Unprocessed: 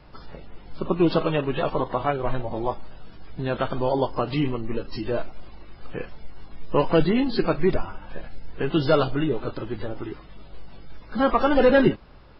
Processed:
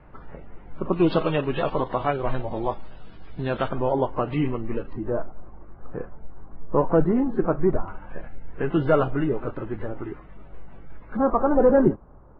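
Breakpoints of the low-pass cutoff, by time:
low-pass 24 dB/octave
2.2 kHz
from 0.93 s 3.9 kHz
from 3.69 s 2.5 kHz
from 4.93 s 1.4 kHz
from 7.88 s 2.2 kHz
from 11.17 s 1.2 kHz

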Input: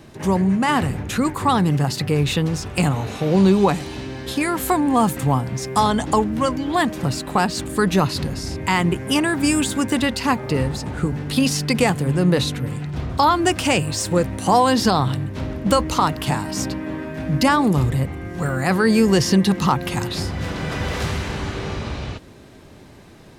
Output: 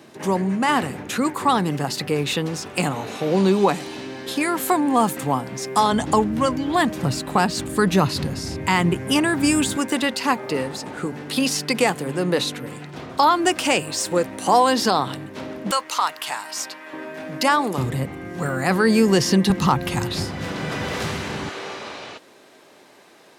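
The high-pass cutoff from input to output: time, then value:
230 Hz
from 5.92 s 83 Hz
from 9.77 s 280 Hz
from 15.71 s 940 Hz
from 16.93 s 400 Hz
from 17.78 s 160 Hz
from 19.50 s 48 Hz
from 20.25 s 140 Hz
from 21.49 s 450 Hz

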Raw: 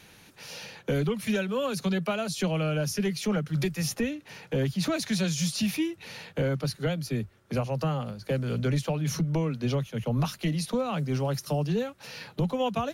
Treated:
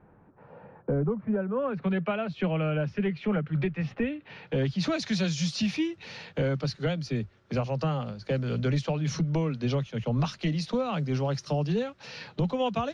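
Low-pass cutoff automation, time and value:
low-pass 24 dB/octave
1.35 s 1.2 kHz
1.98 s 2.7 kHz
4.01 s 2.7 kHz
4.87 s 5.8 kHz

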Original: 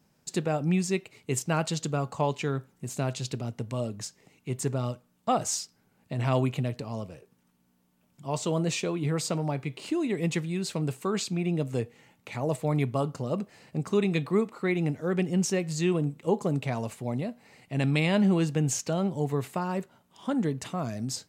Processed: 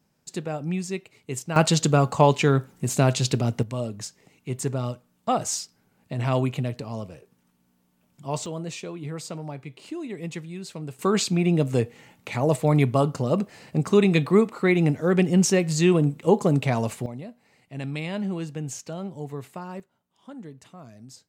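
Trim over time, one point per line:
-2.5 dB
from 1.56 s +10 dB
from 3.63 s +2 dB
from 8.46 s -5.5 dB
from 10.99 s +7 dB
from 17.06 s -6 dB
from 19.80 s -13 dB

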